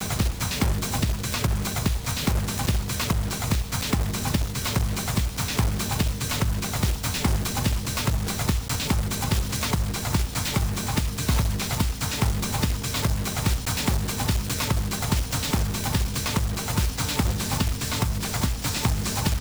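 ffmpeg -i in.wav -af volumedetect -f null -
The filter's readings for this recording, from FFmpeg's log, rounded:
mean_volume: -24.8 dB
max_volume: -10.2 dB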